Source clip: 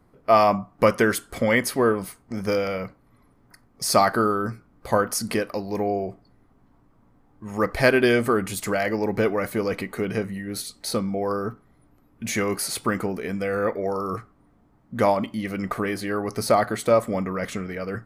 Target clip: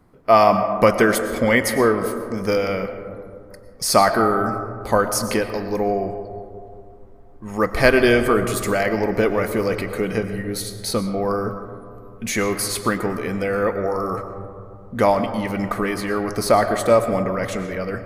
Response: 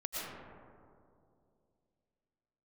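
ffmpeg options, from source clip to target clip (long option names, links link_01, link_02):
-filter_complex "[0:a]asplit=2[link_01][link_02];[link_02]asubboost=boost=11.5:cutoff=53[link_03];[1:a]atrim=start_sample=2205[link_04];[link_03][link_04]afir=irnorm=-1:irlink=0,volume=-8.5dB[link_05];[link_01][link_05]amix=inputs=2:normalize=0,volume=1.5dB"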